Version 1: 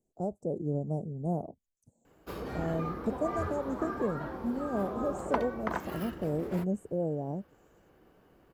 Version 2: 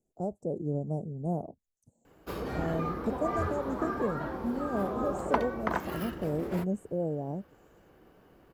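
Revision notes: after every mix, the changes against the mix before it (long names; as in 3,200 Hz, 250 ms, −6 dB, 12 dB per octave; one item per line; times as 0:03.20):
background +3.0 dB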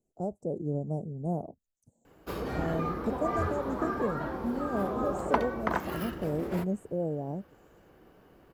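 reverb: on, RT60 0.90 s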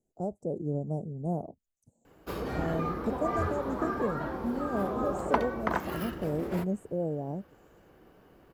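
nothing changed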